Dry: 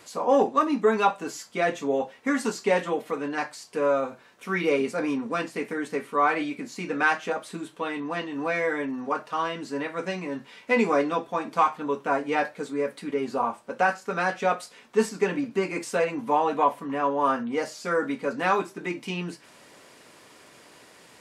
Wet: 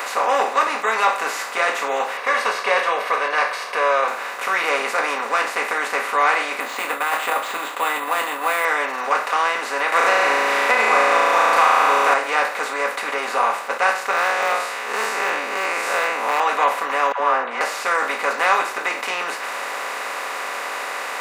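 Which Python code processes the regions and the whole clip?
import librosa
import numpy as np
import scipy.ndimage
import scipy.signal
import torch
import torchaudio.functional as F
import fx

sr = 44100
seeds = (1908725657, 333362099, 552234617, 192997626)

y = fx.chain(x, sr, fx.savgol(points=15),
    fx.comb(ms=1.8, depth=0.83), at=(2.17, 4.08))
y = fx.chain(y, sr, fx.cabinet(low_hz=210.0, low_slope=12, high_hz=3900.0, hz=(280.0, 410.0, 600.0, 1600.0, 2300.0, 3500.0), db=(8, -7, -3, -8, -6, 7)),
    fx.over_compress(threshold_db=-28.0, ratio=-0.5),
    fx.resample_bad(factor=4, down='filtered', up='hold'), at=(6.6, 8.65))
y = fx.chain(y, sr, fx.room_flutter(wall_m=6.1, rt60_s=1.2),
    fx.band_squash(depth_pct=100), at=(9.92, 12.14))
y = fx.chain(y, sr, fx.spec_blur(span_ms=120.0),
    fx.clip_hard(threshold_db=-23.0), at=(14.11, 16.4))
y = fx.chain(y, sr, fx.lowpass(hz=1500.0, slope=12),
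    fx.dispersion(late='lows', ms=87.0, hz=730.0), at=(17.12, 17.61))
y = fx.bin_compress(y, sr, power=0.4)
y = scipy.signal.sosfilt(scipy.signal.butter(2, 870.0, 'highpass', fs=sr, output='sos'), y)
y = fx.attack_slew(y, sr, db_per_s=360.0)
y = y * 10.0 ** (2.5 / 20.0)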